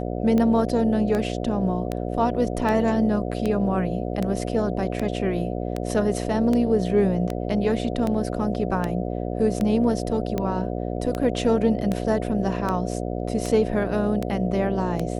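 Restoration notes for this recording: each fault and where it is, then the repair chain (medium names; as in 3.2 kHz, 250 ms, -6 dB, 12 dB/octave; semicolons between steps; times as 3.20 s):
buzz 60 Hz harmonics 12 -28 dBFS
tick 78 rpm -13 dBFS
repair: de-click; de-hum 60 Hz, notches 12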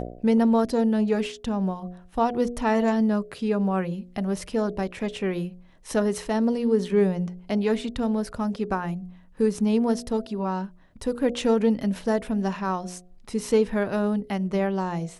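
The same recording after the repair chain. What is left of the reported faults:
nothing left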